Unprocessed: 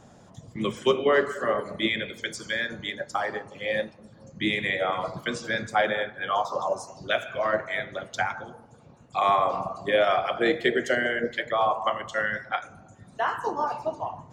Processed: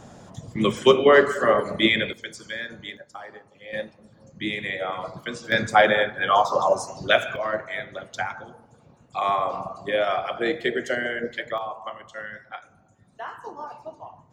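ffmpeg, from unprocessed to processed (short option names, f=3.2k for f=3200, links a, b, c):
-af "asetnsamples=n=441:p=0,asendcmd='2.13 volume volume -4dB;2.97 volume volume -11.5dB;3.73 volume volume -2.5dB;5.52 volume volume 7dB;7.36 volume volume -1.5dB;11.58 volume volume -9dB',volume=6.5dB"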